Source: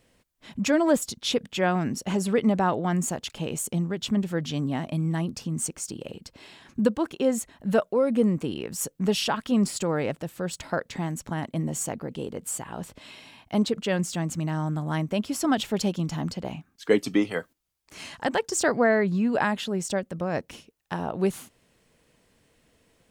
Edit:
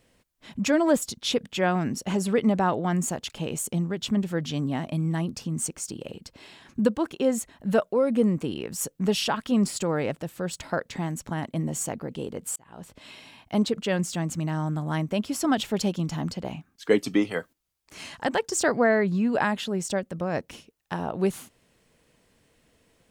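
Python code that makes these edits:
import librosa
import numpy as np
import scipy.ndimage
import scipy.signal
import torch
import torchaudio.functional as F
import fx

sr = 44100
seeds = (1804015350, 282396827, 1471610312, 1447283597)

y = fx.edit(x, sr, fx.fade_in_span(start_s=12.56, length_s=0.54), tone=tone)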